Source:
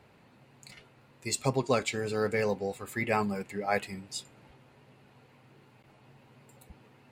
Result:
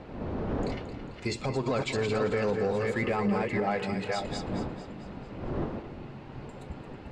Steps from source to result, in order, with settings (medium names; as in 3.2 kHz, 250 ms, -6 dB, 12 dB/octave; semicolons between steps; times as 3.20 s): chunks repeated in reverse 328 ms, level -6.5 dB; wind noise 420 Hz -48 dBFS; peaking EQ 2.3 kHz -2.5 dB; in parallel at +2.5 dB: compression, threshold -39 dBFS, peak gain reduction 16.5 dB; on the sum: peak limiter -20 dBFS, peak gain reduction 9 dB; waveshaping leveller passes 1; distance through air 130 m; two-band feedback delay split 330 Hz, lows 403 ms, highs 222 ms, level -11 dB